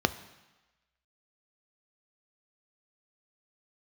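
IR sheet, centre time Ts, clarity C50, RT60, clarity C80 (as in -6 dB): 6 ms, 15.5 dB, 1.1 s, 17.5 dB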